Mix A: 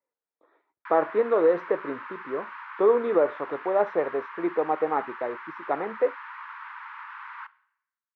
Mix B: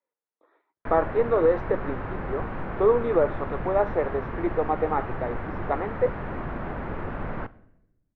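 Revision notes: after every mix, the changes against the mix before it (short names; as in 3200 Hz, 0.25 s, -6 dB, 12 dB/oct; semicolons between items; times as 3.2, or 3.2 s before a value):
background: remove steep high-pass 910 Hz 96 dB/oct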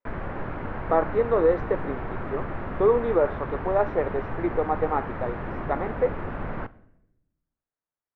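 background: entry -0.80 s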